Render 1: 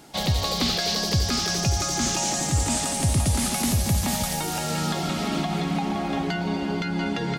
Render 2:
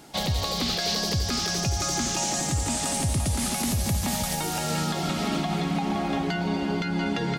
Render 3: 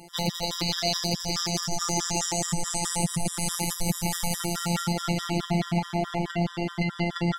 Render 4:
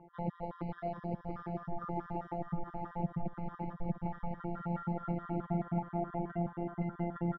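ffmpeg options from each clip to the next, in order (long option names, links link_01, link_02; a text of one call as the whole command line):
ffmpeg -i in.wav -af "alimiter=limit=-17dB:level=0:latency=1:release=122" out.wav
ffmpeg -i in.wav -af "asubboost=boost=3:cutoff=110,afftfilt=real='hypot(re,im)*cos(PI*b)':imag='0':win_size=1024:overlap=0.75,afftfilt=real='re*gt(sin(2*PI*4.7*pts/sr)*(1-2*mod(floor(b*sr/1024/980),2)),0)':imag='im*gt(sin(2*PI*4.7*pts/sr)*(1-2*mod(floor(b*sr/1024/980),2)),0)':win_size=1024:overlap=0.75,volume=5.5dB" out.wav
ffmpeg -i in.wav -filter_complex "[0:a]lowpass=frequency=1400:width=0.5412,lowpass=frequency=1400:width=1.3066,asplit=2[link_01][link_02];[link_02]adelay=699.7,volume=-14dB,highshelf=frequency=4000:gain=-15.7[link_03];[link_01][link_03]amix=inputs=2:normalize=0,volume=-8dB" out.wav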